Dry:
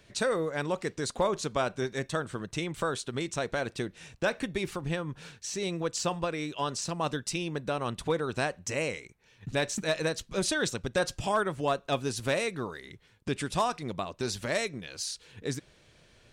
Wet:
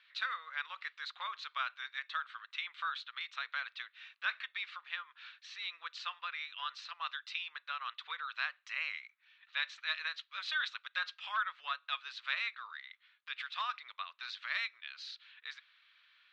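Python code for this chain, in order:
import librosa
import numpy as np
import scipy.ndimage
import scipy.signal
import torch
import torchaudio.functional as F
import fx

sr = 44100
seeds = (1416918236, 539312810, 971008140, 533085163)

y = scipy.signal.sosfilt(scipy.signal.ellip(3, 1.0, 70, [1200.0, 3900.0], 'bandpass', fs=sr, output='sos'), x)
y = y * 10.0 ** (-1.0 / 20.0)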